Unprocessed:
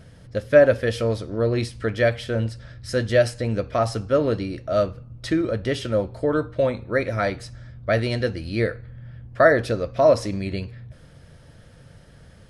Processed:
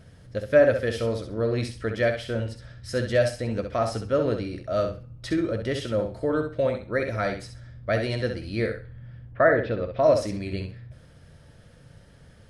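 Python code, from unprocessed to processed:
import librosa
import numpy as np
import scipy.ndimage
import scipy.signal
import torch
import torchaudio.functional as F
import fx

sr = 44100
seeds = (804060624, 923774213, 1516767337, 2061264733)

p1 = fx.lowpass(x, sr, hz=fx.line((9.31, 2500.0), (10.02, 4200.0)), slope=24, at=(9.31, 10.02), fade=0.02)
p2 = p1 + fx.echo_feedback(p1, sr, ms=65, feedback_pct=21, wet_db=-7, dry=0)
y = p2 * 10.0 ** (-4.0 / 20.0)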